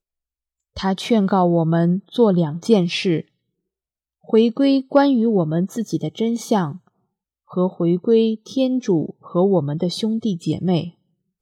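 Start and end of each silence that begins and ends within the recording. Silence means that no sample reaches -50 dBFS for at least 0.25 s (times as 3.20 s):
3.28–4.24 s
6.88–7.49 s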